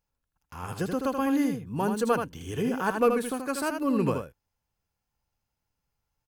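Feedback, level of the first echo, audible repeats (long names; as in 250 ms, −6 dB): repeats not evenly spaced, −6.0 dB, 1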